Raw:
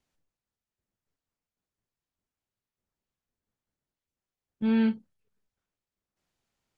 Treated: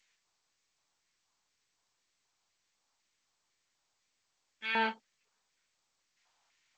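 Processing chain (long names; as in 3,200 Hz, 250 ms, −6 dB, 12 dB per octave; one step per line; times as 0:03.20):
auto-filter high-pass square 2 Hz 860–2,000 Hz
level +5 dB
G.722 64 kbit/s 16,000 Hz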